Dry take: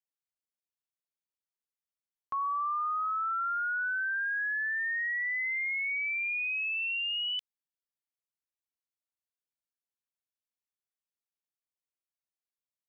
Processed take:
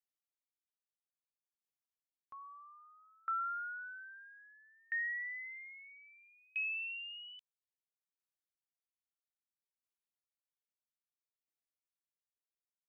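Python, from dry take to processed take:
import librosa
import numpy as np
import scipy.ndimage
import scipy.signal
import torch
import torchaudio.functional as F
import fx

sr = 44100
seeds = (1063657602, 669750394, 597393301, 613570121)

y = fx.tremolo_decay(x, sr, direction='decaying', hz=0.61, depth_db=36)
y = F.gain(torch.from_numpy(y), -2.5).numpy()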